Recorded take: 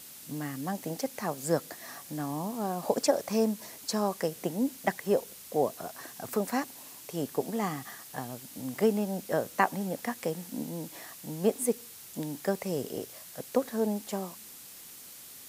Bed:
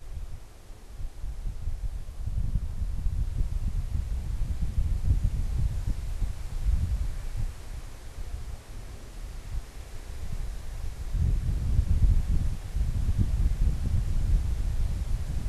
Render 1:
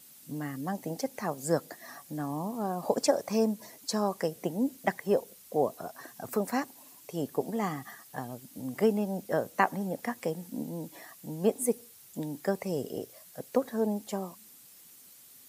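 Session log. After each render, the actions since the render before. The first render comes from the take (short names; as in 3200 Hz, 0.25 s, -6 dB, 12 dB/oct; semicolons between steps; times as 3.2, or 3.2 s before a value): denoiser 9 dB, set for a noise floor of -48 dBFS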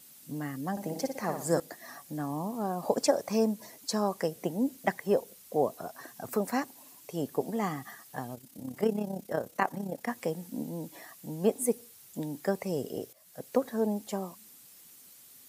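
0.71–1.6 flutter echo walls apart 10.1 m, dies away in 0.51 s; 8.35–10.08 AM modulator 33 Hz, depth 50%; 13.13–13.58 fade in equal-power, from -15 dB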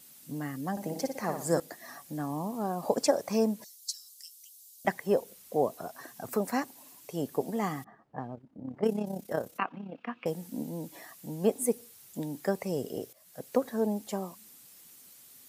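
3.64–4.85 inverse Chebyshev high-pass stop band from 690 Hz, stop band 80 dB; 7.84–9.06 low-pass opened by the level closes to 580 Hz, open at -23.5 dBFS; 9.58–10.26 speaker cabinet 230–2900 Hz, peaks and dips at 390 Hz -8 dB, 580 Hz -10 dB, 840 Hz -8 dB, 1300 Hz +5 dB, 1900 Hz -10 dB, 2700 Hz +10 dB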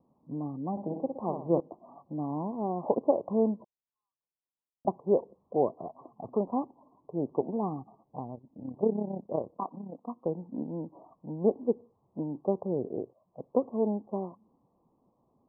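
steep low-pass 1100 Hz 96 dB/oct; dynamic EQ 350 Hz, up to +5 dB, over -46 dBFS, Q 4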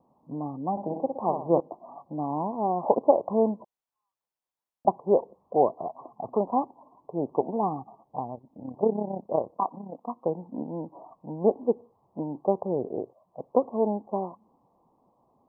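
bell 840 Hz +9 dB 1.4 oct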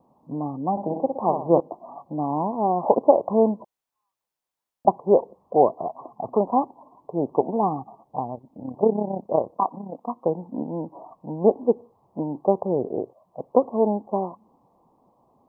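gain +4.5 dB; limiter -2 dBFS, peak gain reduction 1 dB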